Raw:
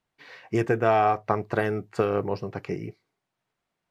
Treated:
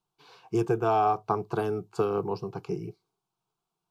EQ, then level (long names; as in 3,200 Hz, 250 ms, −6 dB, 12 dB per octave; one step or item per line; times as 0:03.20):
phaser with its sweep stopped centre 380 Hz, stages 8
0.0 dB